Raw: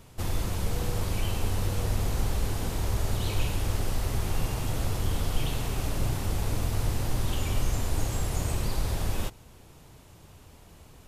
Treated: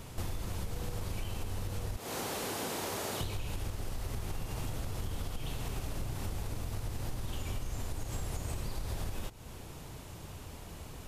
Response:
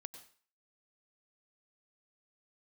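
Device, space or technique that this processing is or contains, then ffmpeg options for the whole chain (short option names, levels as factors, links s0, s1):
serial compression, leveller first: -filter_complex "[0:a]asettb=1/sr,asplit=3[s0][s1][s2];[s0]atrim=end=1.974[s3];[s1]atrim=start=1.97:end=3.21,asetpts=PTS-STARTPTS,afade=t=in:d=0.004:c=qsin,afade=t=out:st=1.236:d=0.004:c=qsin,highpass=290[s4];[s2]atrim=start=3.206[s5];[s3][s4]acrossfade=d=0.004:c1=hsin:c2=qsin[s6];[s6][s5]acrossfade=d=0.004:c1=qsin:c2=hsin,acompressor=threshold=0.0447:ratio=2.5,acompressor=threshold=0.0112:ratio=6,volume=1.88"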